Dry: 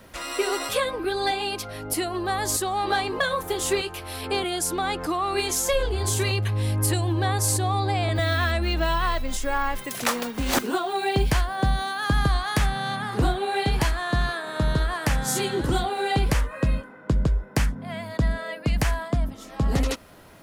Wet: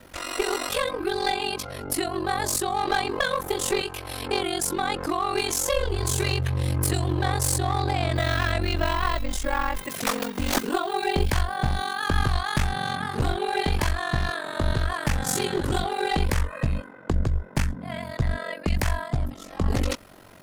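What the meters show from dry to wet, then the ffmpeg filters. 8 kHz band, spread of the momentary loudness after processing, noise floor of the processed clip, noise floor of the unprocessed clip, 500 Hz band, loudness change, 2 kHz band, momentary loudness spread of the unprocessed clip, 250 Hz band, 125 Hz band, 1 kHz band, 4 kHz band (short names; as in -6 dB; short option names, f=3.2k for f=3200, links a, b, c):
-1.0 dB, 5 LU, -43 dBFS, -43 dBFS, -1.0 dB, -1.0 dB, -0.5 dB, 5 LU, -1.0 dB, -1.0 dB, -0.5 dB, -0.5 dB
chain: -af "aeval=exprs='clip(val(0),-1,0.075)':c=same,aeval=exprs='val(0)*sin(2*PI*23*n/s)':c=same,volume=3dB"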